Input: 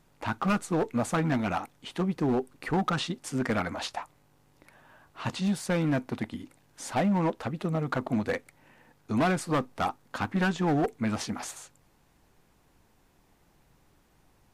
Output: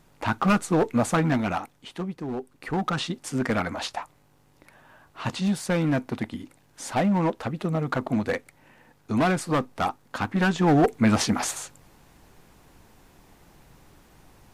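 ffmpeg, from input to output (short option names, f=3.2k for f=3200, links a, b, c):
-af "volume=22dB,afade=t=out:st=1.03:d=1.21:silence=0.251189,afade=t=in:st=2.24:d=0.92:silence=0.334965,afade=t=in:st=10.37:d=0.81:silence=0.446684"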